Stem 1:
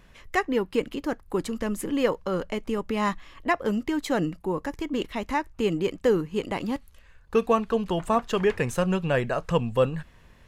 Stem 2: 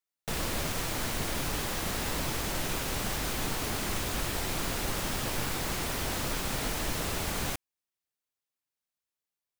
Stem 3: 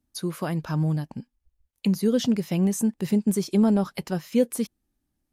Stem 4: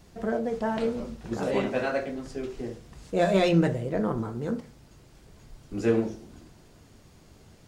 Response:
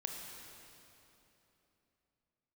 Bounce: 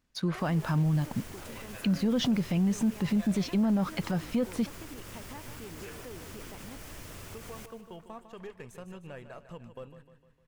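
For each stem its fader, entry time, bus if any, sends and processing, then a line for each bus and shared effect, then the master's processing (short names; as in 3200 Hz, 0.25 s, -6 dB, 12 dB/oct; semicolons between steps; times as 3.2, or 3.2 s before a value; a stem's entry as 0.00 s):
-11.0 dB, 0.00 s, bus A, no send, echo send -12 dB, half-wave gain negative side -3 dB; high shelf 11000 Hz +5.5 dB; compressor 2.5:1, threshold -34 dBFS, peak gain reduction 11.5 dB
-18.5 dB, 0.10 s, bus A, no send, echo send -15.5 dB, thirty-one-band EQ 100 Hz +9 dB, 800 Hz -5 dB, 4000 Hz -5 dB; AGC gain up to 5.5 dB
0.0 dB, 0.00 s, no bus, no send, no echo send, LPF 3900 Hz 12 dB/oct; bell 400 Hz -7 dB 0.63 oct; sample leveller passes 1
-10.5 dB, 0.00 s, bus A, no send, no echo send, HPF 1100 Hz 12 dB/oct
bus A: 0.0 dB, gate -49 dBFS, range -12 dB; limiter -33 dBFS, peak gain reduction 7 dB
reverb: off
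echo: feedback echo 0.152 s, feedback 50%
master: limiter -20.5 dBFS, peak gain reduction 9.5 dB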